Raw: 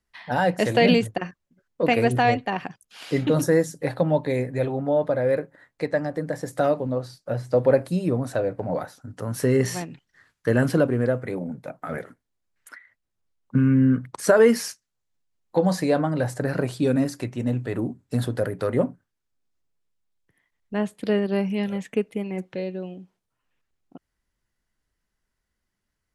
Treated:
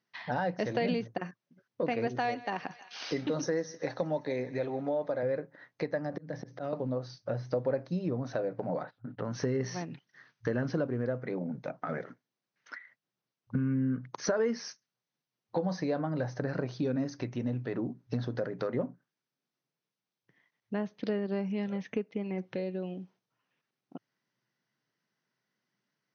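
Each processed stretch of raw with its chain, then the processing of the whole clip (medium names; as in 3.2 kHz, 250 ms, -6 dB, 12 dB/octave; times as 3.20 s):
2.07–5.23 s: Bessel high-pass 220 Hz + treble shelf 5 kHz +10 dB + thinning echo 157 ms, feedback 59%, high-pass 710 Hz, level -20 dB
6.12–6.73 s: bass shelf 250 Hz +7.5 dB + slow attack 492 ms + three bands compressed up and down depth 70%
8.84–9.25 s: steep low-pass 3.7 kHz + gate -47 dBFS, range -18 dB
whole clip: dynamic bell 3 kHz, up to -5 dB, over -47 dBFS, Q 1.6; FFT band-pass 110–6400 Hz; compression 2.5:1, threshold -33 dBFS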